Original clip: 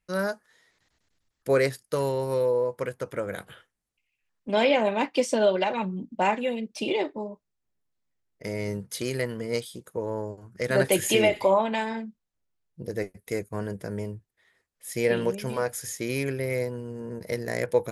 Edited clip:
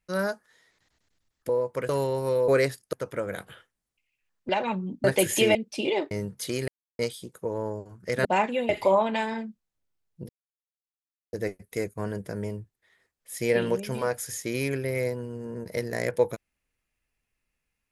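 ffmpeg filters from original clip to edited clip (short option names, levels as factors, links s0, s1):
-filter_complex "[0:a]asplit=14[s0][s1][s2][s3][s4][s5][s6][s7][s8][s9][s10][s11][s12][s13];[s0]atrim=end=1.492[s14];[s1]atrim=start=2.528:end=2.932[s15];[s2]atrim=start=1.938:end=2.532[s16];[s3]atrim=start=1.488:end=1.942[s17];[s4]atrim=start=2.928:end=4.492[s18];[s5]atrim=start=5.588:end=6.142[s19];[s6]atrim=start=10.768:end=11.282[s20];[s7]atrim=start=6.578:end=7.142[s21];[s8]atrim=start=8.628:end=9.2,asetpts=PTS-STARTPTS,afade=t=out:st=0.568:d=0.004:c=hsin[s22];[s9]atrim=start=9.2:end=9.51,asetpts=PTS-STARTPTS,volume=0[s23];[s10]atrim=start=9.51:end=10.772,asetpts=PTS-STARTPTS,afade=t=in:d=0.004:c=hsin[s24];[s11]atrim=start=6.138:end=6.582[s25];[s12]atrim=start=11.278:end=12.88,asetpts=PTS-STARTPTS,afade=t=out:st=1.598:d=0.004:c=hsin,apad=pad_dur=1.04[s26];[s13]atrim=start=12.88,asetpts=PTS-STARTPTS,afade=t=in:d=0.004:c=hsin[s27];[s14][s15]acrossfade=d=0.004:c1=hsin:c2=hsin[s28];[s28][s16]acrossfade=d=0.004:c1=hsin:c2=hsin[s29];[s29][s17]acrossfade=d=0.004:c1=hsin:c2=hsin[s30];[s30][s18]acrossfade=d=0.004:c1=hsin:c2=hsin[s31];[s31][s19]acrossfade=d=0.004:c1=hsin:c2=hsin[s32];[s32][s20]acrossfade=d=0.004:c1=hsin:c2=hsin[s33];[s33][s21]acrossfade=d=0.004:c1=hsin:c2=hsin[s34];[s22][s23][s24]concat=n=3:v=0:a=1[s35];[s34][s35]acrossfade=d=0.004:c1=hsin:c2=hsin[s36];[s36][s25]acrossfade=d=0.004:c1=hsin:c2=hsin[s37];[s26][s27]concat=n=2:v=0:a=1[s38];[s37][s38]acrossfade=d=0.004:c1=hsin:c2=hsin"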